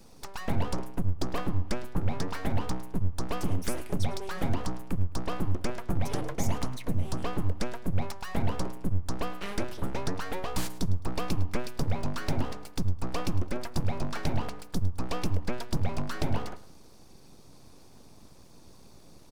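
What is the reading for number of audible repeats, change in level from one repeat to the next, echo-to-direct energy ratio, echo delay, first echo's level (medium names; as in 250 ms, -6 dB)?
2, -11.0 dB, -17.5 dB, 106 ms, -18.0 dB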